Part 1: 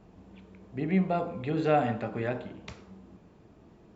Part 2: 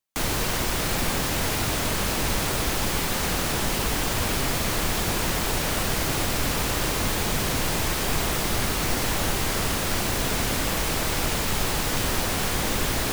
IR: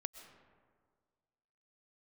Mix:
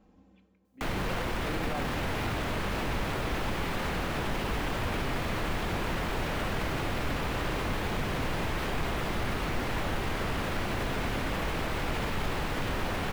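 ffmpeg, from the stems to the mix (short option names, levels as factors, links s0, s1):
-filter_complex "[0:a]aecho=1:1:3.8:0.89,tremolo=f=0.7:d=0.77,volume=0.398[s0];[1:a]acrossover=split=3300[s1][s2];[s2]acompressor=threshold=0.00501:ratio=4:attack=1:release=60[s3];[s1][s3]amix=inputs=2:normalize=0,asoftclip=type=hard:threshold=0.126,adelay=650,volume=0.891[s4];[s0][s4]amix=inputs=2:normalize=0,alimiter=limit=0.0708:level=0:latency=1"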